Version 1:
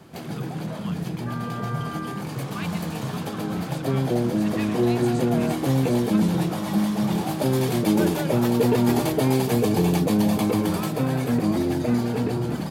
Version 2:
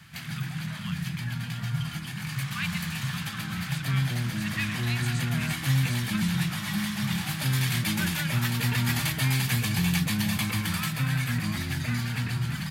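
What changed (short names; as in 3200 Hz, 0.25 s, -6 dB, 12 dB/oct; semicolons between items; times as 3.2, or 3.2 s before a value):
second sound: muted; master: add EQ curve 150 Hz 0 dB, 430 Hz -27 dB, 1800 Hz +7 dB, 5900 Hz +2 dB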